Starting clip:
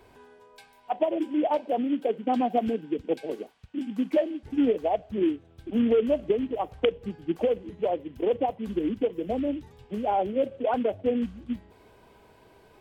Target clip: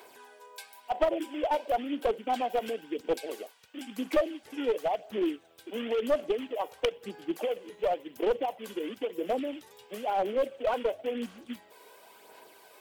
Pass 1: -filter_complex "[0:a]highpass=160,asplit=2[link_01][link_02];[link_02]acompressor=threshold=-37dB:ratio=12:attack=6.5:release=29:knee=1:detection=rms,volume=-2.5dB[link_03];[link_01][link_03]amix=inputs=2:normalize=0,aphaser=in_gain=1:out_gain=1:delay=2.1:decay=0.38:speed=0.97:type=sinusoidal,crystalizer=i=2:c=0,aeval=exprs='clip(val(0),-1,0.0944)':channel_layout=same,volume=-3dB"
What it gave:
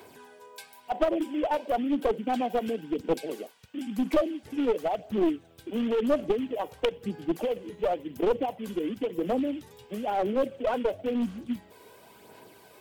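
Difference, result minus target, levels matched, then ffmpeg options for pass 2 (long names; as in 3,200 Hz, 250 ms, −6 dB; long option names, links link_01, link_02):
125 Hz band +8.5 dB
-filter_complex "[0:a]highpass=470,asplit=2[link_01][link_02];[link_02]acompressor=threshold=-37dB:ratio=12:attack=6.5:release=29:knee=1:detection=rms,volume=-2.5dB[link_03];[link_01][link_03]amix=inputs=2:normalize=0,aphaser=in_gain=1:out_gain=1:delay=2.1:decay=0.38:speed=0.97:type=sinusoidal,crystalizer=i=2:c=0,aeval=exprs='clip(val(0),-1,0.0944)':channel_layout=same,volume=-3dB"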